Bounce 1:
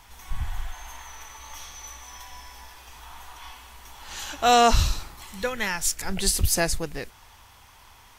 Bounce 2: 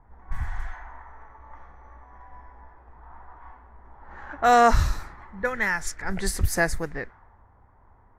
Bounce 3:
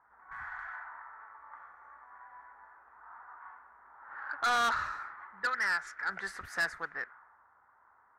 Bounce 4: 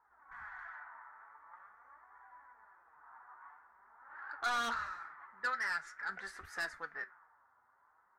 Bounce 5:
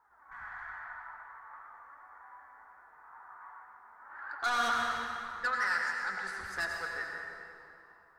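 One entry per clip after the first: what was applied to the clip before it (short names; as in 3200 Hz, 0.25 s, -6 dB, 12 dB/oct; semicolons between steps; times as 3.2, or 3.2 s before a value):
resonant high shelf 2300 Hz -7 dB, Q 3; low-pass opened by the level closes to 550 Hz, open at -21.5 dBFS
band-pass 1400 Hz, Q 3.5; soft clip -31 dBFS, distortion -6 dB; gain +5.5 dB
flange 0.46 Hz, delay 2.1 ms, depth 6.2 ms, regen +38%; resonator 77 Hz, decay 0.17 s, mix 50%; gain +1 dB
reverb RT60 2.7 s, pre-delay 82 ms, DRR 0 dB; gain +3 dB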